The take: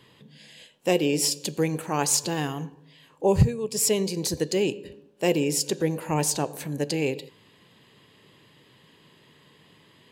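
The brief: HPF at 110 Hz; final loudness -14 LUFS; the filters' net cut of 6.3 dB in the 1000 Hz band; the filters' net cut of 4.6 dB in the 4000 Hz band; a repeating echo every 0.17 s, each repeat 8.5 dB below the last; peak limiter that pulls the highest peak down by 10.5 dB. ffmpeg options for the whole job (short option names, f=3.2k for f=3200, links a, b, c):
-af "highpass=110,equalizer=f=1k:t=o:g=-8.5,equalizer=f=4k:t=o:g=-6.5,alimiter=limit=-19dB:level=0:latency=1,aecho=1:1:170|340|510|680:0.376|0.143|0.0543|0.0206,volume=15.5dB"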